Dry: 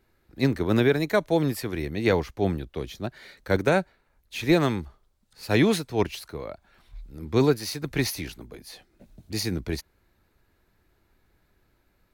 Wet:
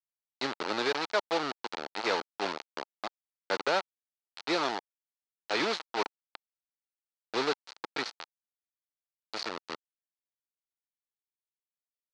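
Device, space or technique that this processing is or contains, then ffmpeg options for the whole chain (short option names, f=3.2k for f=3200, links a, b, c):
hand-held game console: -filter_complex "[0:a]asettb=1/sr,asplit=3[a][b][c];[a]atrim=end=4.794[d];[b]atrim=start=4.79:end=5.6,asetpts=PTS-STARTPTS,afade=t=in:d=0.004:c=qsin,afade=t=out:st=0.806:d=0.004:c=qsin,highpass=f=100:w=0.5412,highpass=f=100:w=1.3066[e];[c]atrim=start=5.596[f];[d][e]acrossfade=d=0.004:c1=hsin:c2=qsin[g];[g][f]acrossfade=d=0.004:c1=qsin:c2=hsin,acrusher=bits=3:mix=0:aa=0.000001,highpass=440,equalizer=f=870:t=q:w=4:g=5,equalizer=f=1.3k:t=q:w=4:g=5,equalizer=f=4.3k:t=q:w=4:g=6,lowpass=f=5.4k:w=0.5412,lowpass=f=5.4k:w=1.3066,volume=-6.5dB"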